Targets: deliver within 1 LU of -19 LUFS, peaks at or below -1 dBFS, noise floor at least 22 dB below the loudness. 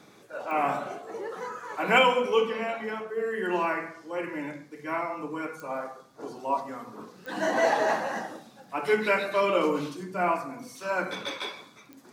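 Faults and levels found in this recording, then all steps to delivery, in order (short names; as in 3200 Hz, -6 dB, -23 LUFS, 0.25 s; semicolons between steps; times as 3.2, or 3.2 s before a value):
clicks 4; loudness -28.5 LUFS; peak -8.0 dBFS; loudness target -19.0 LUFS
-> de-click; gain +9.5 dB; limiter -1 dBFS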